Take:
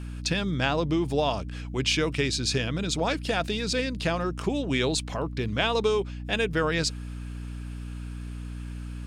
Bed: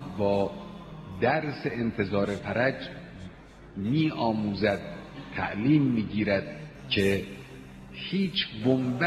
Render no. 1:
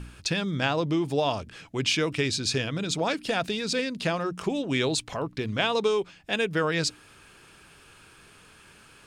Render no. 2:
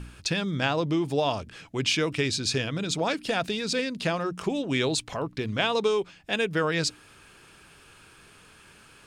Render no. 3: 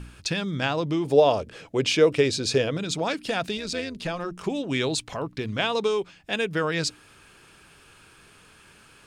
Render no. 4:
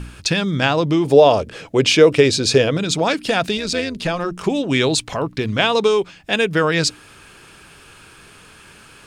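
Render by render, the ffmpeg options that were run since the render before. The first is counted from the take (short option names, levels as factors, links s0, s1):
-af "bandreject=f=60:t=h:w=4,bandreject=f=120:t=h:w=4,bandreject=f=180:t=h:w=4,bandreject=f=240:t=h:w=4,bandreject=f=300:t=h:w=4"
-af anull
-filter_complex "[0:a]asettb=1/sr,asplit=3[s0][s1][s2];[s0]atrim=end=1.054[s3];[s1]atrim=start=1.05:end=2.77,asetpts=PTS-STARTPTS,afade=t=in:d=0.004:c=qsin,afade=t=out:st=1.716:d=0.004:c=qsin,equalizer=f=500:t=o:w=0.96:g=12[s4];[s2]atrim=start=2.766[s5];[s3][s4]acrossfade=d=0.004:c1=hsin:c2=qsin[s6];[s6][s5]acrossfade=d=0.004:c1=qsin:c2=hsin,asettb=1/sr,asplit=3[s7][s8][s9];[s7]atrim=end=3.574[s10];[s8]atrim=start=3.57:end=4.44,asetpts=PTS-STARTPTS,afade=t=in:d=0.004:c=qsin,afade=t=out:st=0.866:d=0.004:c=qsin,tremolo=f=170:d=0.571[s11];[s9]atrim=start=4.436[s12];[s10][s11]acrossfade=d=0.004:c1=hsin:c2=qsin[s13];[s13][s12]acrossfade=d=0.004:c1=qsin:c2=hsin"
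-af "volume=2.66,alimiter=limit=0.891:level=0:latency=1"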